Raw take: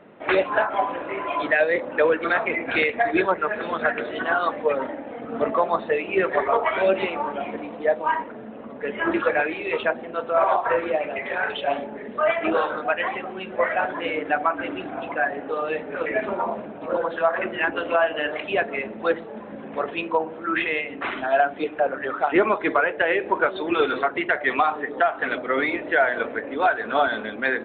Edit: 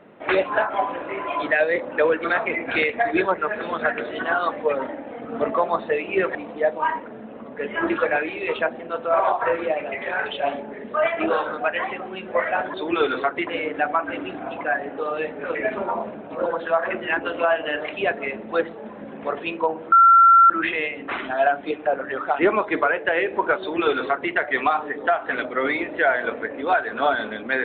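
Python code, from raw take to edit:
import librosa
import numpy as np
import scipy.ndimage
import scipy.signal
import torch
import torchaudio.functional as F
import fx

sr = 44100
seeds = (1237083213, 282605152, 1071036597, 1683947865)

y = fx.edit(x, sr, fx.cut(start_s=6.35, length_s=1.24),
    fx.insert_tone(at_s=20.43, length_s=0.58, hz=1360.0, db=-8.5),
    fx.duplicate(start_s=23.53, length_s=0.73, to_s=13.98), tone=tone)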